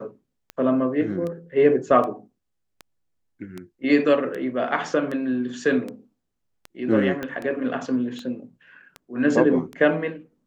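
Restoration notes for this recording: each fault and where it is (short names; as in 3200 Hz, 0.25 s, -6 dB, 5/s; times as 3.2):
tick 78 rpm -20 dBFS
7.23 pop -16 dBFS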